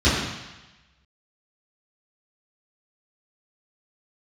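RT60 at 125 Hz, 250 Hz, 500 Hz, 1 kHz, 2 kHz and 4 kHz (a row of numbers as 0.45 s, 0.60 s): 1.1 s, 1.0 s, 0.95 s, 1.1 s, 1.2 s, 1.2 s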